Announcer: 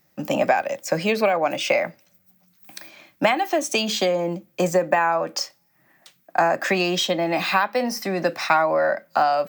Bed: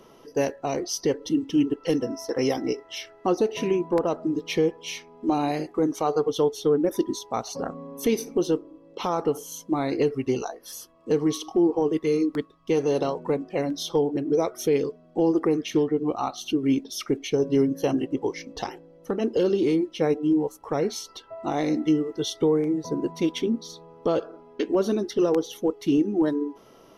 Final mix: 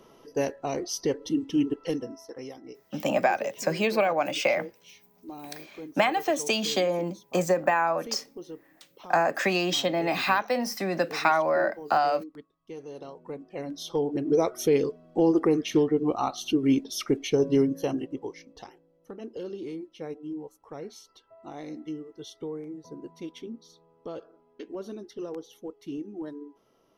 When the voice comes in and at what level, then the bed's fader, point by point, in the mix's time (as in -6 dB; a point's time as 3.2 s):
2.75 s, -4.0 dB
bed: 1.78 s -3 dB
2.53 s -18 dB
12.93 s -18 dB
14.34 s 0 dB
17.5 s 0 dB
18.7 s -14.5 dB